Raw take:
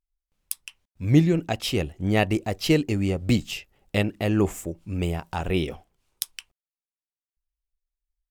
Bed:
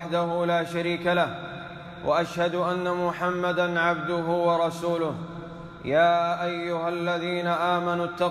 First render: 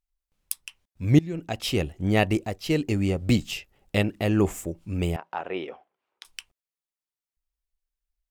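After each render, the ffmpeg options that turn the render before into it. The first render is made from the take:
ffmpeg -i in.wav -filter_complex "[0:a]asettb=1/sr,asplit=3[link_01][link_02][link_03];[link_01]atrim=end=5.164[link_04];[link_02]atrim=start=5.16:end=6.25,asetpts=PTS-STARTPTS,afade=type=in:duration=0.004:curve=qsin,afade=type=out:start_time=1.086:duration=0.004:curve=qsin,highpass=460,lowpass=2000[link_05];[link_03]atrim=start=6.246[link_06];[link_04][link_05]acrossfade=duration=0.004:curve1=hsin:curve2=qsin[link_07];[link_07][link_06]acrossfade=duration=0.004:curve1=qsin:curve2=hsin,asplit=4[link_08][link_09][link_10][link_11];[link_08]atrim=end=1.19,asetpts=PTS-STARTPTS,afade=type=out:start_time=1.186:duration=0.004:curve=hsin:silence=0.0891251[link_12];[link_09]atrim=start=1.19:end=2.62,asetpts=PTS-STARTPTS,afade=type=in:duration=0.54:silence=0.0891251,afade=type=out:start_time=1.18:duration=0.25:silence=0.398107[link_13];[link_10]atrim=start=2.62:end=2.64,asetpts=PTS-STARTPTS,volume=-8dB[link_14];[link_11]atrim=start=2.64,asetpts=PTS-STARTPTS,afade=type=in:duration=0.25:silence=0.398107[link_15];[link_12][link_13][link_14][link_15]concat=n=4:v=0:a=1" out.wav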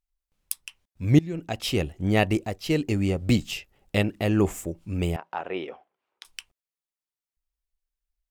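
ffmpeg -i in.wav -af anull out.wav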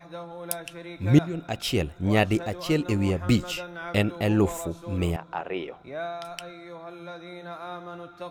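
ffmpeg -i in.wav -i bed.wav -filter_complex "[1:a]volume=-13.5dB[link_01];[0:a][link_01]amix=inputs=2:normalize=0" out.wav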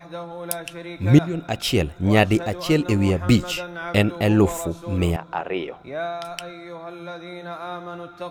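ffmpeg -i in.wav -af "volume=5dB,alimiter=limit=-3dB:level=0:latency=1" out.wav

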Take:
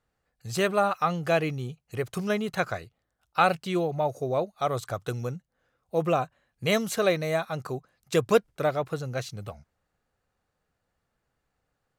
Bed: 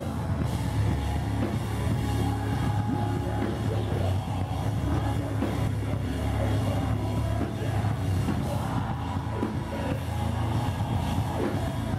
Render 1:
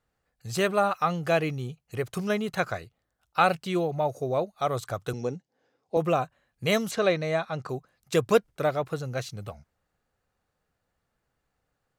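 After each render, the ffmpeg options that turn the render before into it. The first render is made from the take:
ffmpeg -i in.wav -filter_complex "[0:a]asettb=1/sr,asplit=3[link_01][link_02][link_03];[link_01]atrim=end=5.134[link_04];[link_02]atrim=start=5.13:end=5.97,asetpts=PTS-STARTPTS,afade=type=in:duration=0.004:curve=qsin,afade=type=out:start_time=0.836:duration=0.004:curve=qsin,highpass=150,equalizer=frequency=280:width_type=q:width=4:gain=8,equalizer=frequency=420:width_type=q:width=4:gain=9,equalizer=frequency=810:width_type=q:width=4:gain=6,equalizer=frequency=1300:width_type=q:width=4:gain=-7,equalizer=frequency=5100:width_type=q:width=4:gain=6,lowpass=frequency=7600:width=0.5412,lowpass=frequency=7600:width=1.3066[link_05];[link_03]atrim=start=5.966[link_06];[link_04][link_05]acrossfade=duration=0.004:curve1=hsin:curve2=qsin[link_07];[link_07][link_06]acrossfade=duration=0.004:curve1=qsin:curve2=hsin,asettb=1/sr,asplit=3[link_08][link_09][link_10];[link_08]atrim=end=6.914[link_11];[link_09]atrim=start=6.91:end=7.69,asetpts=PTS-STARTPTS,afade=type=in:duration=0.004:curve=qsin,afade=type=out:start_time=0.776:duration=0.004:curve=qsin,lowpass=5800[link_12];[link_10]atrim=start=7.686[link_13];[link_11][link_12]acrossfade=duration=0.004:curve1=hsin:curve2=qsin[link_14];[link_14][link_13]acrossfade=duration=0.004:curve1=qsin:curve2=hsin" out.wav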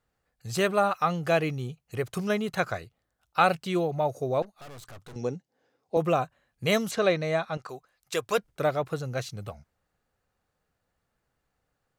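ffmpeg -i in.wav -filter_complex "[0:a]asettb=1/sr,asplit=3[link_01][link_02][link_03];[link_01]atrim=end=4.424[link_04];[link_02]atrim=start=4.42:end=5.16,asetpts=PTS-STARTPTS,afade=type=in:duration=0.004:curve=qsin,afade=type=out:start_time=0.736:duration=0.004:curve=qsin,aeval=exprs='(tanh(158*val(0)+0.6)-tanh(0.6))/158':channel_layout=same[link_05];[link_03]atrim=start=5.156[link_06];[link_04][link_05]acrossfade=duration=0.004:curve1=hsin:curve2=qsin[link_07];[link_07][link_06]acrossfade=duration=0.004:curve1=qsin:curve2=hsin,asettb=1/sr,asplit=3[link_08][link_09][link_10];[link_08]atrim=end=7.574[link_11];[link_09]atrim=start=7.57:end=8.38,asetpts=PTS-STARTPTS,afade=type=in:duration=0.004:curve=qsin,afade=type=out:start_time=0.806:duration=0.004:curve=qsin,equalizer=frequency=150:width=0.44:gain=-14.5[link_12];[link_10]atrim=start=8.376[link_13];[link_11][link_12]acrossfade=duration=0.004:curve1=hsin:curve2=qsin[link_14];[link_14][link_13]acrossfade=duration=0.004:curve1=qsin:curve2=hsin" out.wav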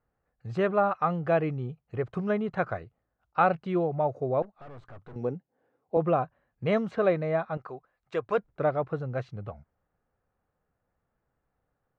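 ffmpeg -i in.wav -af "lowpass=1500" out.wav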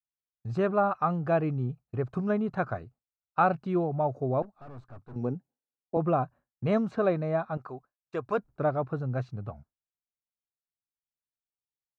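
ffmpeg -i in.wav -af "agate=range=-33dB:threshold=-45dB:ratio=3:detection=peak,equalizer=frequency=125:width_type=o:width=0.33:gain=4,equalizer=frequency=250:width_type=o:width=0.33:gain=5,equalizer=frequency=500:width_type=o:width=0.33:gain=-5,equalizer=frequency=2000:width_type=o:width=0.33:gain=-9,equalizer=frequency=3150:width_type=o:width=0.33:gain=-8" out.wav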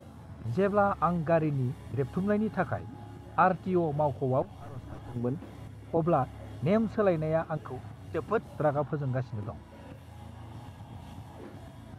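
ffmpeg -i in.wav -i bed.wav -filter_complex "[1:a]volume=-17.5dB[link_01];[0:a][link_01]amix=inputs=2:normalize=0" out.wav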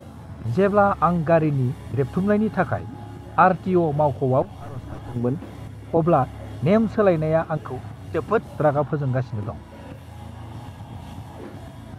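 ffmpeg -i in.wav -af "volume=8dB" out.wav

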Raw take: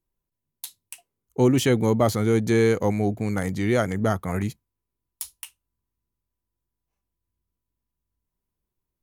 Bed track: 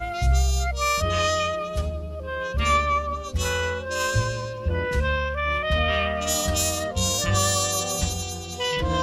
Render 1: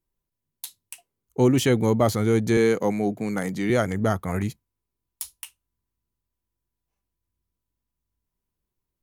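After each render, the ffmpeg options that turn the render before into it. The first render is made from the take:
ffmpeg -i in.wav -filter_complex "[0:a]asettb=1/sr,asplit=3[link_01][link_02][link_03];[link_01]atrim=end=2.574[link_04];[link_02]atrim=start=2.57:end=3.7,asetpts=PTS-STARTPTS,afade=type=in:duration=0.004:curve=qsin,afade=type=out:start_time=1.126:duration=0.004:curve=qsin,highpass=frequency=140:width=0.5412,highpass=frequency=140:width=1.3066[link_05];[link_03]atrim=start=3.696[link_06];[link_04][link_05]acrossfade=duration=0.004:curve1=hsin:curve2=qsin[link_07];[link_07][link_06]acrossfade=duration=0.004:curve1=qsin:curve2=hsin" out.wav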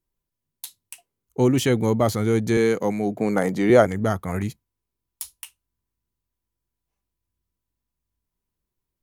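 ffmpeg -i in.wav -filter_complex "[0:a]asettb=1/sr,asplit=3[link_01][link_02][link_03];[link_01]atrim=end=3.164[link_04];[link_02]atrim=start=3.16:end=3.87,asetpts=PTS-STARTPTS,afade=type=in:duration=0.004:curve=qsin,afade=type=out:start_time=0.706:duration=0.004:curve=qsin,equalizer=frequency=600:width=0.54:gain=9.5[link_05];[link_03]atrim=start=3.866[link_06];[link_04][link_05]acrossfade=duration=0.004:curve1=hsin:curve2=qsin[link_07];[link_07][link_06]acrossfade=duration=0.004:curve1=qsin:curve2=hsin" out.wav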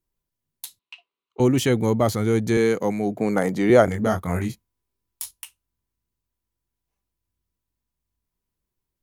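ffmpeg -i in.wav -filter_complex "[0:a]asettb=1/sr,asplit=3[link_01][link_02][link_03];[link_01]atrim=end=0.794[link_04];[link_02]atrim=start=0.79:end=1.4,asetpts=PTS-STARTPTS,afade=type=in:duration=0.004:curve=qsin,afade=type=out:start_time=0.606:duration=0.004:curve=qsin,highpass=480,equalizer=frequency=530:width_type=q:width=4:gain=-6,equalizer=frequency=770:width_type=q:width=4:gain=-4,equalizer=frequency=1100:width_type=q:width=4:gain=7,equalizer=frequency=1700:width_type=q:width=4:gain=-5,equalizer=frequency=2700:width_type=q:width=4:gain=8,equalizer=frequency=3900:width_type=q:width=4:gain=6,lowpass=frequency=4000:width=0.5412,lowpass=frequency=4000:width=1.3066[link_05];[link_03]atrim=start=1.396[link_06];[link_04][link_05]acrossfade=duration=0.004:curve1=hsin:curve2=qsin[link_07];[link_07][link_06]acrossfade=duration=0.004:curve1=qsin:curve2=hsin,asettb=1/sr,asplit=3[link_08][link_09][link_10];[link_08]atrim=end=3.854[link_11];[link_09]atrim=start=3.85:end=5.31,asetpts=PTS-STARTPTS,afade=type=in:duration=0.004:curve=qsin,afade=type=out:start_time=1.456:duration=0.004:curve=qsin,asplit=2[link_12][link_13];[link_13]adelay=23,volume=-4dB[link_14];[link_12][link_14]amix=inputs=2:normalize=0,atrim=end_sample=64386[link_15];[link_10]atrim=start=5.306[link_16];[link_11][link_15]acrossfade=duration=0.004:curve1=hsin:curve2=qsin[link_17];[link_17][link_16]acrossfade=duration=0.004:curve1=qsin:curve2=hsin" out.wav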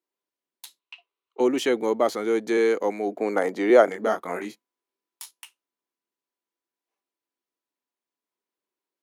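ffmpeg -i in.wav -af "highpass=frequency=300:width=0.5412,highpass=frequency=300:width=1.3066,highshelf=frequency=6700:gain=-11.5" out.wav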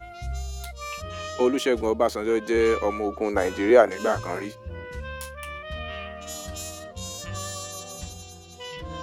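ffmpeg -i in.wav -i bed.wav -filter_complex "[1:a]volume=-12dB[link_01];[0:a][link_01]amix=inputs=2:normalize=0" out.wav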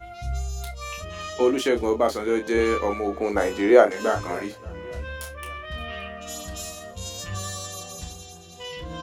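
ffmpeg -i in.wav -filter_complex "[0:a]asplit=2[link_01][link_02];[link_02]adelay=30,volume=-6.5dB[link_03];[link_01][link_03]amix=inputs=2:normalize=0,aecho=1:1:572|1144|1716:0.0668|0.0307|0.0141" out.wav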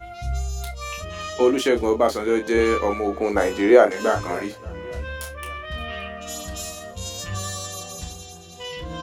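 ffmpeg -i in.wav -af "volume=2.5dB,alimiter=limit=-2dB:level=0:latency=1" out.wav

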